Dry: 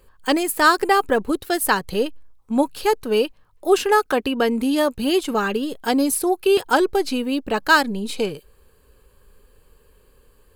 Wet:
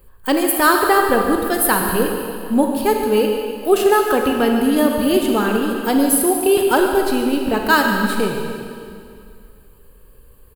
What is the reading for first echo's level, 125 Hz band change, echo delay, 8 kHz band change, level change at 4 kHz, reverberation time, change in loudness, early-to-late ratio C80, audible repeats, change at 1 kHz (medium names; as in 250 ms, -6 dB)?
-11.5 dB, no reading, 144 ms, +6.0 dB, +0.5 dB, 2.3 s, +3.5 dB, 3.5 dB, 1, +2.5 dB